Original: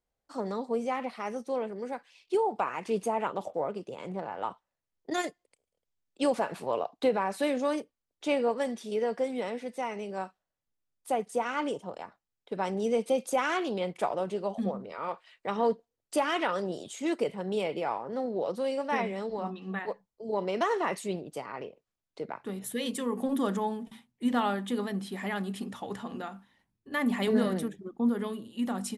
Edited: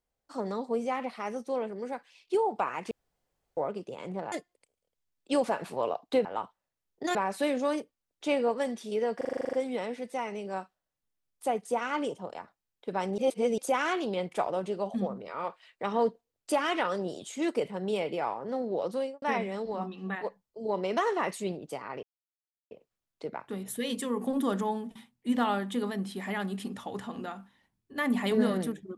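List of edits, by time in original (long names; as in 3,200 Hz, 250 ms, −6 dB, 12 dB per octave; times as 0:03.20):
0:02.91–0:03.57: fill with room tone
0:04.32–0:05.22: move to 0:07.15
0:09.17: stutter 0.04 s, 10 plays
0:12.82–0:13.22: reverse
0:18.61–0:18.86: fade out and dull
0:21.67: splice in silence 0.68 s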